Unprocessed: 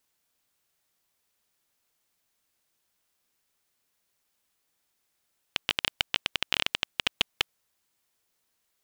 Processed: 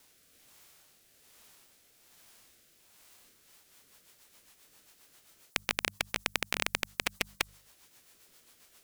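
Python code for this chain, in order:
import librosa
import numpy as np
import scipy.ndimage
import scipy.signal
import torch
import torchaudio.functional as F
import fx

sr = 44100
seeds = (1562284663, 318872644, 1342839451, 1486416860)

y = fx.hum_notches(x, sr, base_hz=50, count=4)
y = fx.formant_shift(y, sr, semitones=-4)
y = fx.rotary_switch(y, sr, hz=1.2, then_hz=7.5, switch_at_s=3.15)
y = fx.spectral_comp(y, sr, ratio=2.0)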